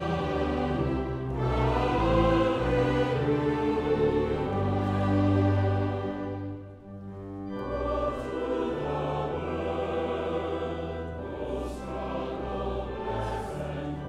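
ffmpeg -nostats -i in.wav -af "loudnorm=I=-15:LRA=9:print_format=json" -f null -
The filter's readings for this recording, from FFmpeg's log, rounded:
"input_i" : "-29.5",
"input_tp" : "-11.2",
"input_lra" : "7.4",
"input_thresh" : "-39.6",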